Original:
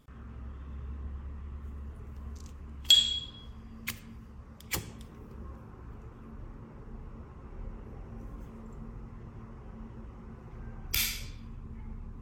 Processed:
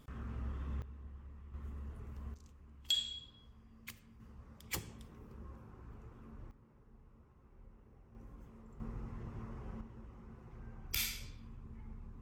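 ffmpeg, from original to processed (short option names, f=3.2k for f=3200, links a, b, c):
-af "asetnsamples=n=441:p=0,asendcmd='0.82 volume volume -10.5dB;1.54 volume volume -3.5dB;2.34 volume volume -13dB;4.2 volume volume -6.5dB;6.51 volume volume -16.5dB;8.15 volume volume -10dB;8.8 volume volume 0dB;9.81 volume volume -7dB',volume=2dB"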